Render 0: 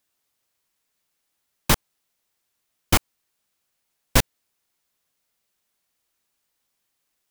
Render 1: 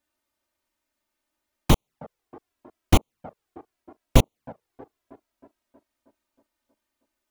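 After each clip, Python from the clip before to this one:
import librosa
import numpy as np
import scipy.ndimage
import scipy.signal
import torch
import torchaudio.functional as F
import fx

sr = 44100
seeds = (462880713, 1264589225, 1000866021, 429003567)

y = fx.high_shelf(x, sr, hz=2300.0, db=-10.5)
y = fx.echo_wet_bandpass(y, sr, ms=317, feedback_pct=58, hz=420.0, wet_db=-15)
y = fx.env_flanger(y, sr, rest_ms=3.3, full_db=-22.0)
y = y * 10.0 ** (5.0 / 20.0)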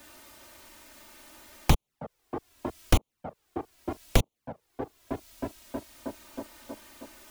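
y = fx.band_squash(x, sr, depth_pct=100)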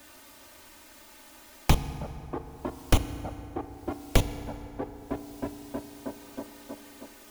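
y = fx.rev_fdn(x, sr, rt60_s=3.5, lf_ratio=1.0, hf_ratio=0.5, size_ms=21.0, drr_db=9.5)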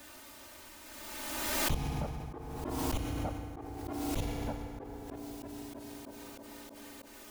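y = fx.auto_swell(x, sr, attack_ms=140.0)
y = fx.pre_swell(y, sr, db_per_s=26.0)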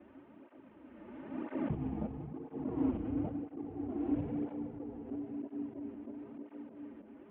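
y = fx.cvsd(x, sr, bps=16000)
y = fx.bandpass_q(y, sr, hz=260.0, q=1.7)
y = fx.flanger_cancel(y, sr, hz=1.0, depth_ms=7.9)
y = y * 10.0 ** (9.0 / 20.0)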